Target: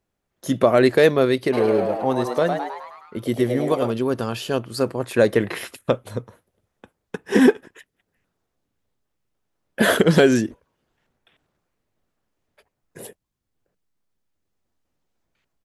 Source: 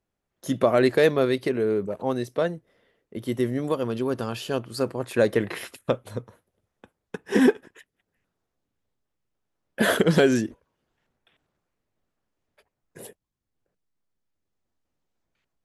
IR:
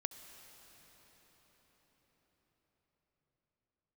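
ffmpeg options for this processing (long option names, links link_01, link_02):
-filter_complex "[0:a]asplit=3[link_01][link_02][link_03];[link_01]afade=type=out:start_time=1.52:duration=0.02[link_04];[link_02]asplit=8[link_05][link_06][link_07][link_08][link_09][link_10][link_11][link_12];[link_06]adelay=105,afreqshift=120,volume=-6dB[link_13];[link_07]adelay=210,afreqshift=240,volume=-10.9dB[link_14];[link_08]adelay=315,afreqshift=360,volume=-15.8dB[link_15];[link_09]adelay=420,afreqshift=480,volume=-20.6dB[link_16];[link_10]adelay=525,afreqshift=600,volume=-25.5dB[link_17];[link_11]adelay=630,afreqshift=720,volume=-30.4dB[link_18];[link_12]adelay=735,afreqshift=840,volume=-35.3dB[link_19];[link_05][link_13][link_14][link_15][link_16][link_17][link_18][link_19]amix=inputs=8:normalize=0,afade=type=in:start_time=1.52:duration=0.02,afade=type=out:start_time=3.9:duration=0.02[link_20];[link_03]afade=type=in:start_time=3.9:duration=0.02[link_21];[link_04][link_20][link_21]amix=inputs=3:normalize=0,volume=4dB"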